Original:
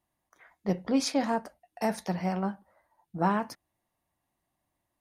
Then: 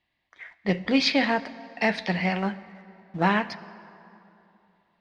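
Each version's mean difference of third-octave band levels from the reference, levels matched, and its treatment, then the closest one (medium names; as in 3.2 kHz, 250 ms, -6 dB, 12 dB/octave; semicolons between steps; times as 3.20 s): 5.0 dB: high-order bell 2.9 kHz +14.5 dB; in parallel at -9 dB: companded quantiser 4-bit; on the sum: distance through air 150 m; plate-style reverb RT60 3 s, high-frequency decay 0.6×, DRR 15.5 dB; trim +1 dB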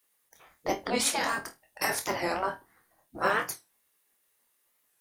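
9.5 dB: spectral gate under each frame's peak -10 dB weak; treble shelf 8.3 kHz +10 dB; on a send: flutter echo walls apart 4.3 m, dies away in 0.2 s; on the sum: warped record 45 rpm, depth 160 cents; trim +8 dB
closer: first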